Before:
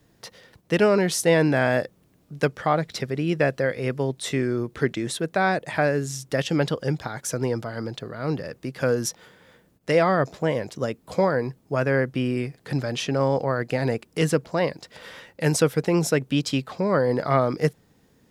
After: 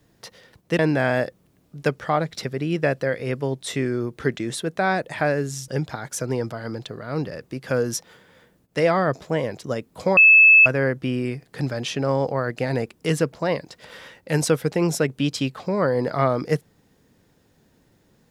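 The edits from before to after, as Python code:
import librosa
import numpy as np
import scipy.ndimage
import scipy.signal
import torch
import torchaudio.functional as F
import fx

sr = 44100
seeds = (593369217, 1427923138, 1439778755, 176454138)

y = fx.edit(x, sr, fx.cut(start_s=0.79, length_s=0.57),
    fx.cut(start_s=6.25, length_s=0.55),
    fx.bleep(start_s=11.29, length_s=0.49, hz=2610.0, db=-8.0), tone=tone)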